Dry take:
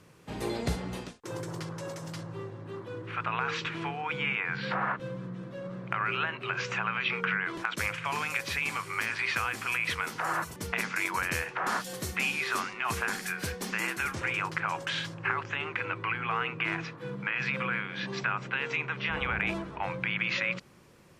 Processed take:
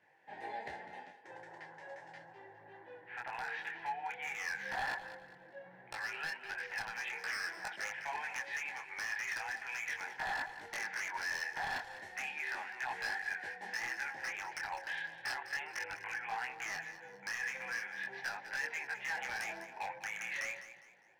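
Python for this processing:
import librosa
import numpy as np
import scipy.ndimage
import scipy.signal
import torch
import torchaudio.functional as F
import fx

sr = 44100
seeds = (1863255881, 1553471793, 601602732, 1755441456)

p1 = fx.double_bandpass(x, sr, hz=1200.0, octaves=1.1)
p2 = 10.0 ** (-33.5 / 20.0) * (np.abs((p1 / 10.0 ** (-33.5 / 20.0) + 3.0) % 4.0 - 2.0) - 1.0)
p3 = p2 + fx.echo_feedback(p2, sr, ms=203, feedback_pct=34, wet_db=-13.0, dry=0)
p4 = fx.detune_double(p3, sr, cents=13)
y = F.gain(torch.from_numpy(p4), 5.5).numpy()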